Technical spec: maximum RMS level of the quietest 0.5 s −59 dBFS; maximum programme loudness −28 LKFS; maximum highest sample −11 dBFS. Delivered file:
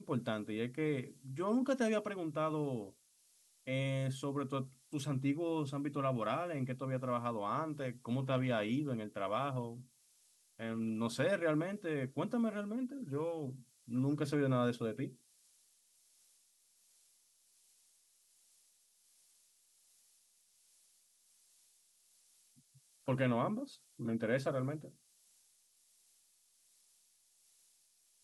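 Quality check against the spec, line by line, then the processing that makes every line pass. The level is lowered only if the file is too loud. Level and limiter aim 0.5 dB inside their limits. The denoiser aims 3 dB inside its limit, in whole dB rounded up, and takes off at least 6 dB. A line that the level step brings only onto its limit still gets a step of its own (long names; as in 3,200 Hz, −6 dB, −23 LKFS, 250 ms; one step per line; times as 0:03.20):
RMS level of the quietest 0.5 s −72 dBFS: in spec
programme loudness −37.5 LKFS: in spec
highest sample −21.5 dBFS: in spec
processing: no processing needed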